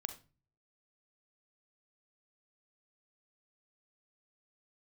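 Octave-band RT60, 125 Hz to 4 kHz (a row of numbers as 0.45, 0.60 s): 0.70, 0.55, 0.35, 0.30, 0.30, 0.25 s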